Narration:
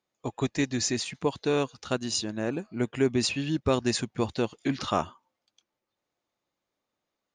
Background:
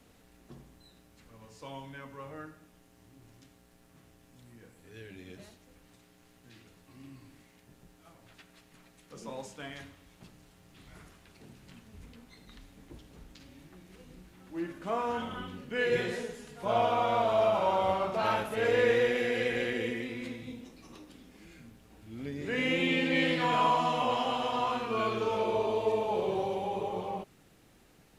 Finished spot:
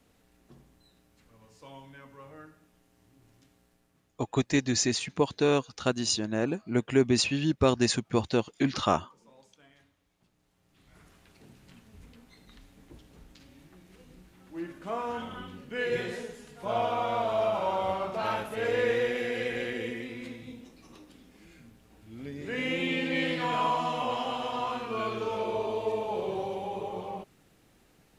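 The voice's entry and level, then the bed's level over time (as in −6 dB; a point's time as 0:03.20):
3.95 s, +1.5 dB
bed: 0:03.64 −4.5 dB
0:04.35 −17 dB
0:10.32 −17 dB
0:11.18 −1.5 dB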